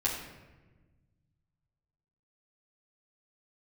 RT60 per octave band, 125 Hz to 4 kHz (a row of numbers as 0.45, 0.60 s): 2.6, 1.9, 1.4, 1.1, 1.1, 0.75 s